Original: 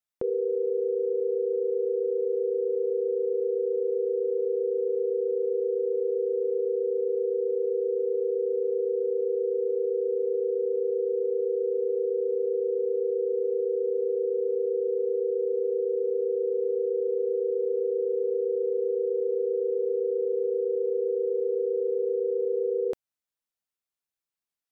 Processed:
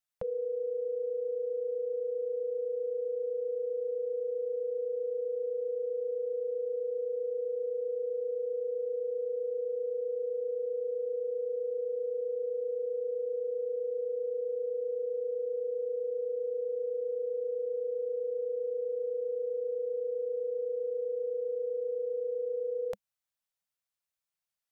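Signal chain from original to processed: elliptic band-stop 200–510 Hz, stop band 40 dB

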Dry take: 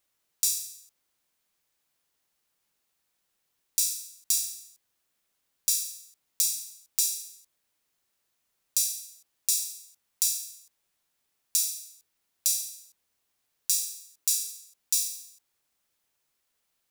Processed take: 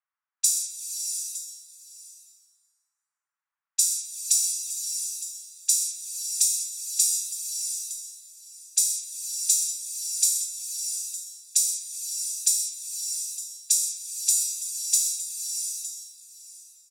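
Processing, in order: level-controlled noise filter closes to 1.4 kHz, open at -26.5 dBFS; high-pass 1.1 kHz 24 dB/octave; level-controlled noise filter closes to 1.8 kHz, open at -25 dBFS; peaking EQ 7.7 kHz +12.5 dB 1.4 oct; compression, threshold -18 dBFS, peak gain reduction 6.5 dB; on a send: delay 911 ms -16 dB; on the sum: swelling reverb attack 680 ms, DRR 4 dB

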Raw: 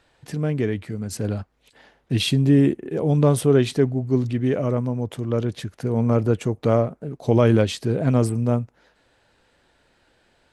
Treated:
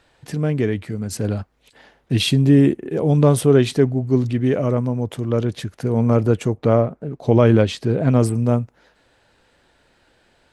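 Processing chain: 6.53–8.19 s: treble shelf 4.9 kHz -> 8.3 kHz -11.5 dB; trim +3 dB

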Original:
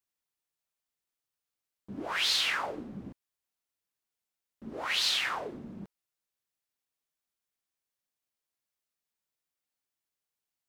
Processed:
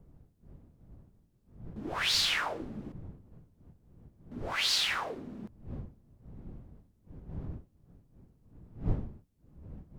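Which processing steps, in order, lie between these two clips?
wind noise 140 Hz -44 dBFS; tape speed +7%

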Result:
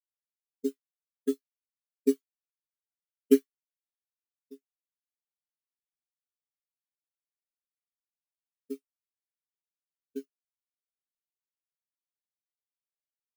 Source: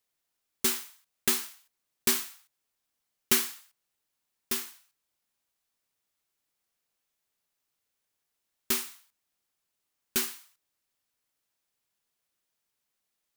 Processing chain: frequency shift +31 Hz; spectral contrast expander 4:1; trim +1.5 dB

